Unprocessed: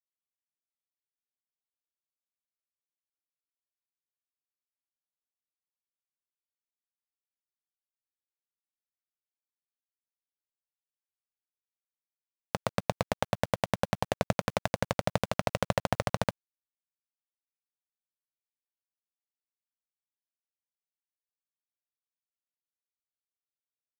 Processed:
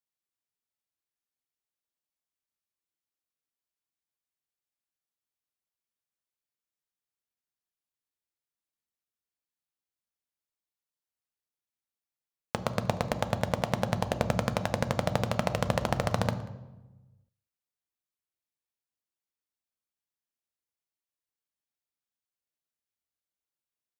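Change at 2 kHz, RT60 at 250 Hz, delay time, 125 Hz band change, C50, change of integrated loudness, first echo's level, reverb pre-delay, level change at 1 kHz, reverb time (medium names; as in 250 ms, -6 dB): +0.5 dB, 1.4 s, 187 ms, +3.5 dB, 12.5 dB, +1.5 dB, -23.5 dB, 3 ms, +0.5 dB, 1.1 s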